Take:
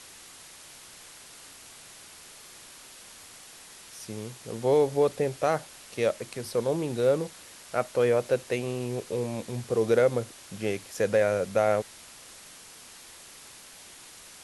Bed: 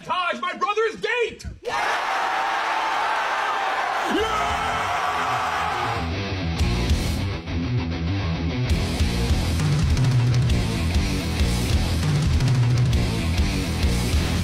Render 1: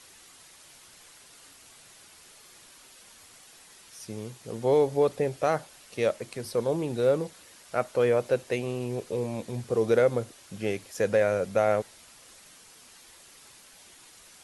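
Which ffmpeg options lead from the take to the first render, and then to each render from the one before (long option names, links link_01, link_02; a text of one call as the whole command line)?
ffmpeg -i in.wav -af "afftdn=noise_reduction=6:noise_floor=-49" out.wav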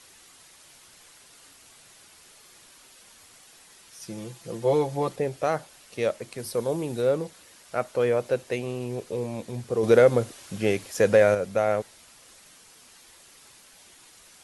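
ffmpeg -i in.wav -filter_complex "[0:a]asettb=1/sr,asplit=3[link_01][link_02][link_03];[link_01]atrim=end=4.014[link_04];[link_02]atrim=start=4.01:end=5.16,asetpts=PTS-STARTPTS,afade=type=in:duration=0.004:curve=qsin,afade=type=out:start_time=1.146:duration=0.004:curve=qsin,aecho=1:1:5.9:0.75,atrim=end_sample=50715[link_05];[link_03]atrim=start=5.156[link_06];[link_04][link_05]acrossfade=duration=0.004:curve1=hsin:curve2=qsin[link_07];[link_07][link_06]acrossfade=duration=0.004:curve1=qsin:curve2=hsin,asettb=1/sr,asplit=3[link_08][link_09][link_10];[link_08]atrim=end=6.384[link_11];[link_09]atrim=start=6.38:end=7.02,asetpts=PTS-STARTPTS,afade=type=in:duration=0.004:curve=qsin,afade=type=out:start_time=0.636:duration=0.004:curve=qsin,highshelf=frequency=10000:gain=11[link_12];[link_10]atrim=start=7.016[link_13];[link_11][link_12]acrossfade=duration=0.004:curve1=hsin:curve2=qsin[link_14];[link_14][link_13]acrossfade=duration=0.004:curve1=qsin:curve2=hsin,asettb=1/sr,asplit=3[link_15][link_16][link_17];[link_15]atrim=end=9.834[link_18];[link_16]atrim=start=9.83:end=11.35,asetpts=PTS-STARTPTS,afade=type=in:duration=0.004:curve=qsin,afade=type=out:start_time=1.516:duration=0.004:curve=qsin,acontrast=46[link_19];[link_17]atrim=start=11.346[link_20];[link_18][link_19]acrossfade=duration=0.004:curve1=hsin:curve2=qsin[link_21];[link_21][link_20]acrossfade=duration=0.004:curve1=qsin:curve2=hsin" out.wav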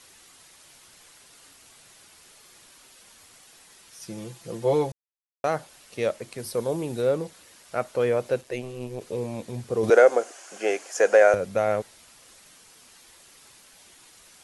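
ffmpeg -i in.wav -filter_complex "[0:a]asettb=1/sr,asplit=3[link_01][link_02][link_03];[link_01]atrim=end=8.414[link_04];[link_02]atrim=start=8.41:end=9.01,asetpts=PTS-STARTPTS,afade=type=in:duration=0.004:curve=qsin,afade=type=out:start_time=0.596:duration=0.004:curve=qsin,tremolo=f=130:d=0.71[link_05];[link_03]atrim=start=9.006[link_06];[link_04][link_05]acrossfade=duration=0.004:curve1=hsin:curve2=qsin[link_07];[link_07][link_06]acrossfade=duration=0.004:curve1=qsin:curve2=hsin,asettb=1/sr,asplit=3[link_08][link_09][link_10];[link_08]atrim=end=9.904[link_11];[link_09]atrim=start=9.9:end=11.34,asetpts=PTS-STARTPTS,afade=type=in:duration=0.004:curve=qsin,afade=type=out:start_time=1.436:duration=0.004:curve=qsin,highpass=frequency=350:width=0.5412,highpass=frequency=350:width=1.3066,equalizer=frequency=720:width_type=q:width=4:gain=8,equalizer=frequency=1500:width_type=q:width=4:gain=6,equalizer=frequency=3800:width_type=q:width=4:gain=-8,equalizer=frequency=6600:width_type=q:width=4:gain=6,lowpass=frequency=9800:width=0.5412,lowpass=frequency=9800:width=1.3066[link_12];[link_10]atrim=start=11.336[link_13];[link_11][link_12]acrossfade=duration=0.004:curve1=hsin:curve2=qsin[link_14];[link_14][link_13]acrossfade=duration=0.004:curve1=qsin:curve2=hsin,asplit=3[link_15][link_16][link_17];[link_15]atrim=end=4.92,asetpts=PTS-STARTPTS,afade=type=out:start_time=4.916:duration=0.004:curve=hsin[link_18];[link_16]atrim=start=4.92:end=5.44,asetpts=PTS-STARTPTS,volume=0[link_19];[link_17]atrim=start=5.44,asetpts=PTS-STARTPTS,afade=type=in:duration=0.004:curve=hsin[link_20];[link_18][link_19][link_20]concat=n=3:v=0:a=1" out.wav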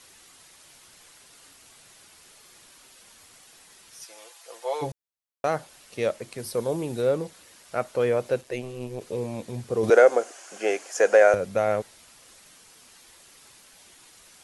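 ffmpeg -i in.wav -filter_complex "[0:a]asplit=3[link_01][link_02][link_03];[link_01]afade=type=out:start_time=4.03:duration=0.02[link_04];[link_02]highpass=frequency=620:width=0.5412,highpass=frequency=620:width=1.3066,afade=type=in:start_time=4.03:duration=0.02,afade=type=out:start_time=4.81:duration=0.02[link_05];[link_03]afade=type=in:start_time=4.81:duration=0.02[link_06];[link_04][link_05][link_06]amix=inputs=3:normalize=0" out.wav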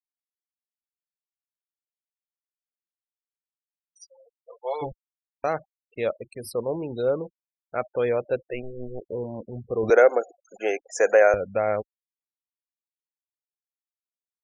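ffmpeg -i in.wav -af "afftfilt=real='re*gte(hypot(re,im),0.02)':imag='im*gte(hypot(re,im),0.02)':win_size=1024:overlap=0.75,asubboost=boost=5.5:cutoff=51" out.wav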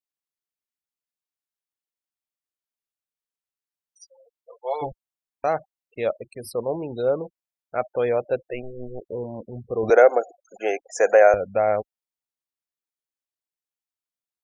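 ffmpeg -i in.wav -af "adynamicequalizer=threshold=0.0158:dfrequency=720:dqfactor=2.4:tfrequency=720:tqfactor=2.4:attack=5:release=100:ratio=0.375:range=3:mode=boostabove:tftype=bell" out.wav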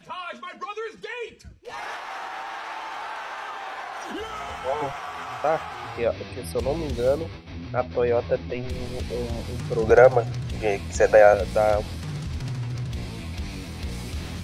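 ffmpeg -i in.wav -i bed.wav -filter_complex "[1:a]volume=-11dB[link_01];[0:a][link_01]amix=inputs=2:normalize=0" out.wav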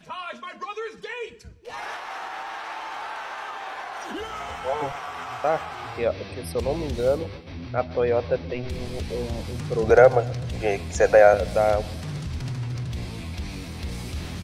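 ffmpeg -i in.wav -filter_complex "[0:a]asplit=2[link_01][link_02];[link_02]adelay=126,lowpass=frequency=2000:poles=1,volume=-21.5dB,asplit=2[link_03][link_04];[link_04]adelay=126,lowpass=frequency=2000:poles=1,volume=0.54,asplit=2[link_05][link_06];[link_06]adelay=126,lowpass=frequency=2000:poles=1,volume=0.54,asplit=2[link_07][link_08];[link_08]adelay=126,lowpass=frequency=2000:poles=1,volume=0.54[link_09];[link_01][link_03][link_05][link_07][link_09]amix=inputs=5:normalize=0" out.wav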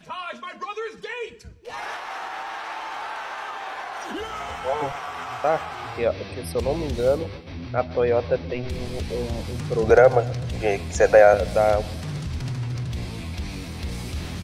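ffmpeg -i in.wav -af "volume=1.5dB,alimiter=limit=-3dB:level=0:latency=1" out.wav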